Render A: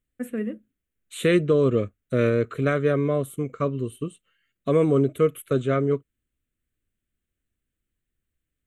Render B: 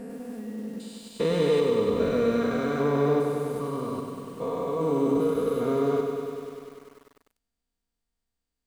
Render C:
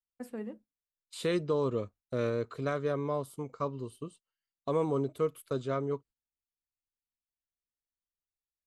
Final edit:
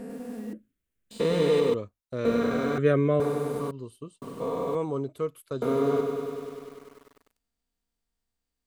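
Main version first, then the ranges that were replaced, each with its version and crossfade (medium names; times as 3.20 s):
B
0.53–1.11 s: from A
1.74–2.25 s: from C
2.78–3.20 s: from A
3.71–4.22 s: from C
4.75–5.62 s: from C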